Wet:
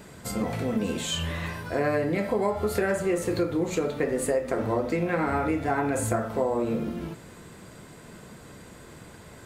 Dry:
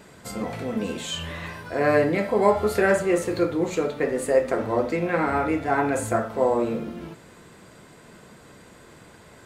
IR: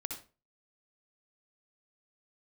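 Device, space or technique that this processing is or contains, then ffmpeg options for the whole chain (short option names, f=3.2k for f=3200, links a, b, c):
ASMR close-microphone chain: -af "lowshelf=f=220:g=6,acompressor=threshold=-22dB:ratio=6,highshelf=f=8.5k:g=6"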